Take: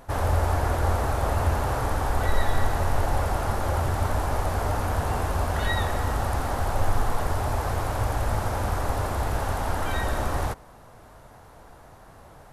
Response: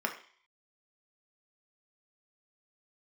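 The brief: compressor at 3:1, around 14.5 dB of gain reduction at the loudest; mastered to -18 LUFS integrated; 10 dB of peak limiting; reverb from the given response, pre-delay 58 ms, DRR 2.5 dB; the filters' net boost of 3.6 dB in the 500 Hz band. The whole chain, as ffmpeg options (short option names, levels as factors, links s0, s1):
-filter_complex "[0:a]equalizer=f=500:t=o:g=4.5,acompressor=threshold=0.0158:ratio=3,alimiter=level_in=2.82:limit=0.0631:level=0:latency=1,volume=0.355,asplit=2[s0][s1];[1:a]atrim=start_sample=2205,adelay=58[s2];[s1][s2]afir=irnorm=-1:irlink=0,volume=0.335[s3];[s0][s3]amix=inputs=2:normalize=0,volume=15.8"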